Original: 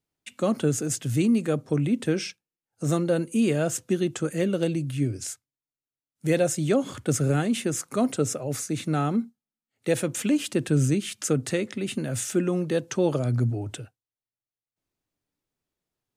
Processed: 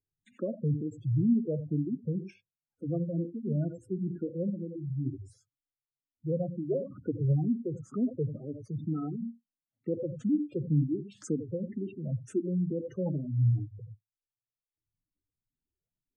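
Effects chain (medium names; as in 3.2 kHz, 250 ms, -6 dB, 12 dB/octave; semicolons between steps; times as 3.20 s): gated-style reverb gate 110 ms rising, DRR 9 dB; 4.49–5.06 s: compression, threshold -26 dBFS, peak gain reduction 7.5 dB; tilt EQ -2.5 dB/octave; spectral gate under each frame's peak -15 dB strong; barber-pole phaser +2.1 Hz; trim -8.5 dB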